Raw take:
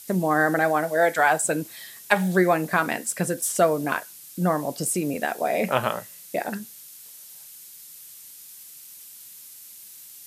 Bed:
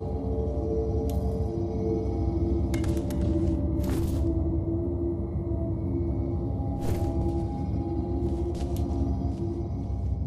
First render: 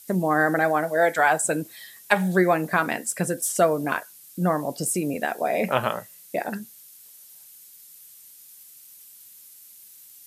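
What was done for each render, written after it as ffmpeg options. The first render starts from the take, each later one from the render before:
ffmpeg -i in.wav -af "afftdn=noise_reduction=6:noise_floor=-45" out.wav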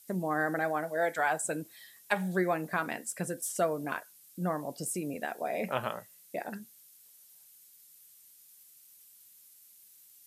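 ffmpeg -i in.wav -af "volume=-9.5dB" out.wav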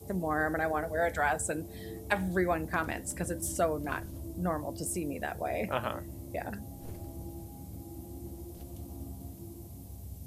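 ffmpeg -i in.wav -i bed.wav -filter_complex "[1:a]volume=-15.5dB[link_01];[0:a][link_01]amix=inputs=2:normalize=0" out.wav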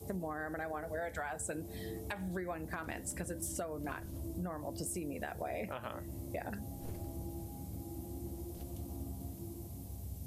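ffmpeg -i in.wav -af "alimiter=limit=-22.5dB:level=0:latency=1:release=306,acompressor=threshold=-36dB:ratio=6" out.wav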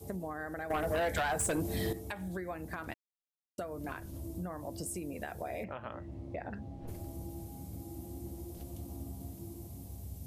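ffmpeg -i in.wav -filter_complex "[0:a]asettb=1/sr,asplit=3[link_01][link_02][link_03];[link_01]atrim=end=0.704[link_04];[link_02]atrim=start=0.7:end=1.93,asetpts=PTS-STARTPTS,afade=type=in:duration=0.004:curve=qsin,afade=type=out:start_time=1.226:duration=0.004:curve=qsin,aeval=exprs='0.0447*sin(PI/2*2.24*val(0)/0.0447)':channel_layout=same[link_05];[link_03]atrim=start=1.926[link_06];[link_04][link_05]acrossfade=duration=0.004:curve1=hsin:curve2=qsin[link_07];[link_07][link_06]acrossfade=duration=0.004:curve1=qsin:curve2=hsin,asplit=3[link_08][link_09][link_10];[link_08]afade=type=out:start_time=5.63:duration=0.02[link_11];[link_09]lowpass=2600,afade=type=in:start_time=5.63:duration=0.02,afade=type=out:start_time=6.87:duration=0.02[link_12];[link_10]afade=type=in:start_time=6.87:duration=0.02[link_13];[link_11][link_12][link_13]amix=inputs=3:normalize=0,asplit=3[link_14][link_15][link_16];[link_14]atrim=end=2.94,asetpts=PTS-STARTPTS,afade=type=out:start_time=2.936:duration=0.004:curve=hsin[link_17];[link_15]atrim=start=2.94:end=3.58,asetpts=PTS-STARTPTS,volume=0[link_18];[link_16]atrim=start=3.58,asetpts=PTS-STARTPTS,afade=type=in:duration=0.004:curve=hsin[link_19];[link_17][link_18][link_19]concat=n=3:v=0:a=1" out.wav

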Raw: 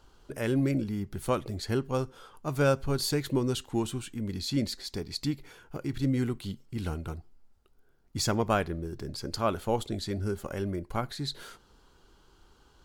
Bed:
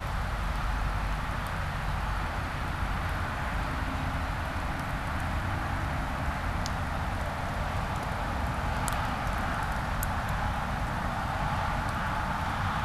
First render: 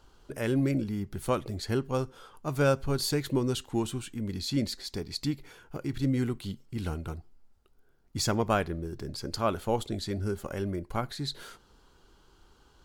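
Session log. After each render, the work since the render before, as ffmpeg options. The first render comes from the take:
ffmpeg -i in.wav -af anull out.wav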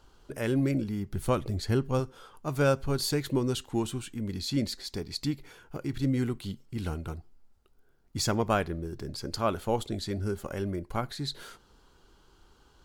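ffmpeg -i in.wav -filter_complex "[0:a]asettb=1/sr,asplit=3[link_01][link_02][link_03];[link_01]atrim=end=1.134[link_04];[link_02]atrim=start=1.13:end=2,asetpts=PTS-STARTPTS,afade=type=in:duration=0.004:curve=qsin,afade=type=out:start_time=0.866:duration=0.004:curve=qsin,lowshelf=frequency=150:gain=7.5[link_05];[link_03]atrim=start=1.996[link_06];[link_04][link_05]acrossfade=duration=0.004:curve1=hsin:curve2=qsin[link_07];[link_07][link_06]acrossfade=duration=0.004:curve1=qsin:curve2=hsin" out.wav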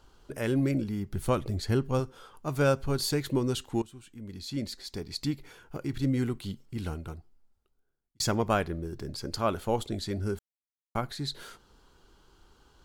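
ffmpeg -i in.wav -filter_complex "[0:a]asplit=5[link_01][link_02][link_03][link_04][link_05];[link_01]atrim=end=3.82,asetpts=PTS-STARTPTS,afade=type=out:start_time=3.816:duration=0.004:curve=hsin:silence=0.125893[link_06];[link_02]atrim=start=3.82:end=8.2,asetpts=PTS-STARTPTS,afade=type=in:duration=1.49:silence=0.125893,afade=type=out:start_time=2.83:duration=1.55[link_07];[link_03]atrim=start=8.2:end=10.39,asetpts=PTS-STARTPTS,afade=type=in:duration=0.004:curve=hsin,afade=type=out:start_time=2.186:duration=0.004:curve=hsin[link_08];[link_04]atrim=start=10.39:end=10.95,asetpts=PTS-STARTPTS,volume=0[link_09];[link_05]atrim=start=10.95,asetpts=PTS-STARTPTS,afade=type=in:duration=0.004:curve=hsin[link_10];[link_06][link_07][link_08][link_09][link_10]concat=n=5:v=0:a=1" out.wav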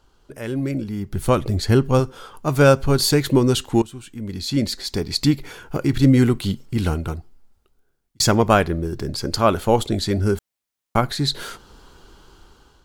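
ffmpeg -i in.wav -af "dynaudnorm=framelen=440:gausssize=5:maxgain=14dB" out.wav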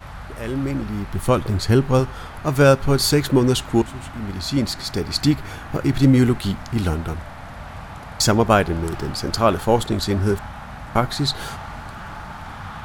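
ffmpeg -i in.wav -i bed.wav -filter_complex "[1:a]volume=-4dB[link_01];[0:a][link_01]amix=inputs=2:normalize=0" out.wav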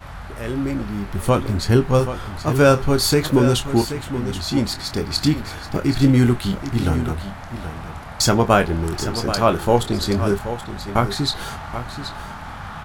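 ffmpeg -i in.wav -filter_complex "[0:a]asplit=2[link_01][link_02];[link_02]adelay=25,volume=-9dB[link_03];[link_01][link_03]amix=inputs=2:normalize=0,aecho=1:1:779:0.282" out.wav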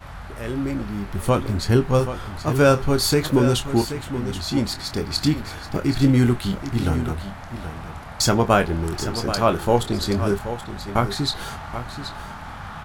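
ffmpeg -i in.wav -af "volume=-2dB" out.wav

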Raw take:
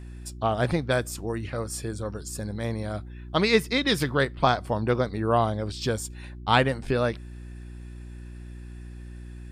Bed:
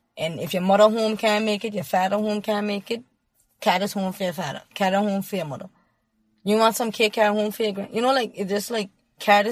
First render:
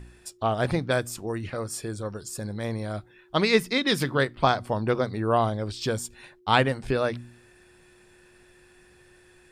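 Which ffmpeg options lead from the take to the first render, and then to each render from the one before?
ffmpeg -i in.wav -af "bandreject=frequency=60:width_type=h:width=4,bandreject=frequency=120:width_type=h:width=4,bandreject=frequency=180:width_type=h:width=4,bandreject=frequency=240:width_type=h:width=4,bandreject=frequency=300:width_type=h:width=4" out.wav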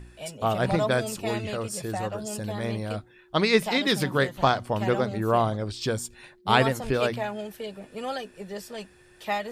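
ffmpeg -i in.wav -i bed.wav -filter_complex "[1:a]volume=-12dB[link_01];[0:a][link_01]amix=inputs=2:normalize=0" out.wav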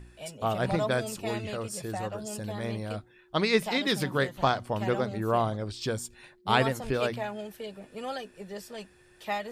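ffmpeg -i in.wav -af "volume=-3.5dB" out.wav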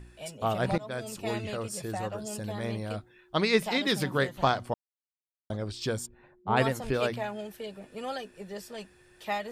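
ffmpeg -i in.wav -filter_complex "[0:a]asplit=3[link_01][link_02][link_03];[link_01]afade=type=out:start_time=6.05:duration=0.02[link_04];[link_02]lowpass=1100,afade=type=in:start_time=6.05:duration=0.02,afade=type=out:start_time=6.56:duration=0.02[link_05];[link_03]afade=type=in:start_time=6.56:duration=0.02[link_06];[link_04][link_05][link_06]amix=inputs=3:normalize=0,asplit=4[link_07][link_08][link_09][link_10];[link_07]atrim=end=0.78,asetpts=PTS-STARTPTS,afade=type=out:start_time=0.776:duration=0.004:curve=hsin:silence=0.1[link_11];[link_08]atrim=start=0.78:end=4.74,asetpts=PTS-STARTPTS,afade=type=in:duration=0.5:silence=0.1,afade=type=out:start_time=3.956:duration=0.004:curve=hsin[link_12];[link_09]atrim=start=4.74:end=5.5,asetpts=PTS-STARTPTS,volume=0[link_13];[link_10]atrim=start=5.5,asetpts=PTS-STARTPTS,afade=type=in:duration=0.004:curve=hsin[link_14];[link_11][link_12][link_13][link_14]concat=n=4:v=0:a=1" out.wav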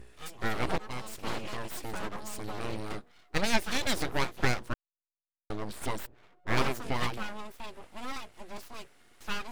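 ffmpeg -i in.wav -af "aeval=exprs='abs(val(0))':channel_layout=same" out.wav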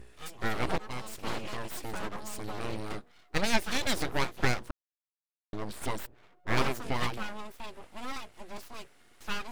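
ffmpeg -i in.wav -filter_complex "[0:a]asplit=3[link_01][link_02][link_03];[link_01]atrim=end=4.71,asetpts=PTS-STARTPTS,afade=type=out:start_time=4.706:duration=0.004:curve=hsin[link_04];[link_02]atrim=start=4.71:end=5.53,asetpts=PTS-STARTPTS,volume=0[link_05];[link_03]atrim=start=5.53,asetpts=PTS-STARTPTS,afade=type=in:duration=0.004:curve=hsin[link_06];[link_04][link_05][link_06]concat=n=3:v=0:a=1" out.wav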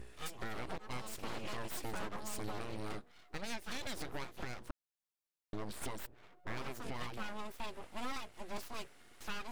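ffmpeg -i in.wav -af "acompressor=threshold=-28dB:ratio=6,alimiter=level_in=4.5dB:limit=-24dB:level=0:latency=1:release=389,volume=-4.5dB" out.wav

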